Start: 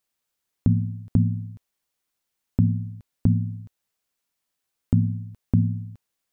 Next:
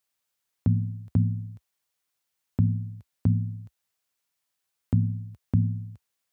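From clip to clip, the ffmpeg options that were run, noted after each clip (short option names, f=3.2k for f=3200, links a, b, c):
-af "highpass=f=66:w=0.5412,highpass=f=66:w=1.3066,equalizer=f=260:w=0.69:g=-5.5"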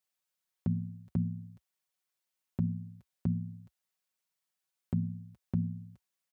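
-af "aecho=1:1:5.4:0.59,volume=-7.5dB"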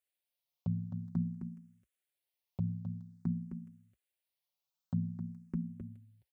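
-filter_complex "[0:a]aecho=1:1:262:0.422,asplit=2[a][b];[b]afreqshift=0.5[c];[a][c]amix=inputs=2:normalize=1,volume=-1.5dB"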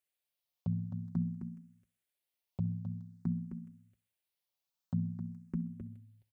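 -af "aecho=1:1:65|130|195:0.0794|0.0397|0.0199"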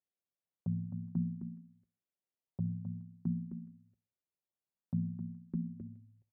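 -af "bandpass=f=230:t=q:w=0.55:csg=0"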